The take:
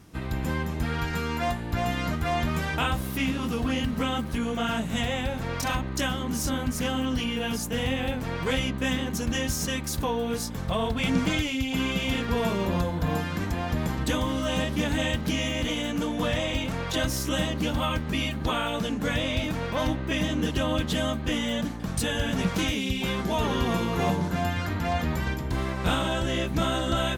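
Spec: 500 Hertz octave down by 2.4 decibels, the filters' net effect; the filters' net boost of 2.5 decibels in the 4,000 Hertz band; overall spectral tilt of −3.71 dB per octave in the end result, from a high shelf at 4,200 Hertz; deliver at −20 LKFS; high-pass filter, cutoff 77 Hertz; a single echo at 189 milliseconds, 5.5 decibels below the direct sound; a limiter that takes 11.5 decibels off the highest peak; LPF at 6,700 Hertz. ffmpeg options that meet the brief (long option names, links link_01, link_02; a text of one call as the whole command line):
ffmpeg -i in.wav -af "highpass=77,lowpass=6700,equalizer=frequency=500:width_type=o:gain=-3,equalizer=frequency=4000:width_type=o:gain=6.5,highshelf=frequency=4200:gain=-5,alimiter=limit=-24dB:level=0:latency=1,aecho=1:1:189:0.531,volume=11.5dB" out.wav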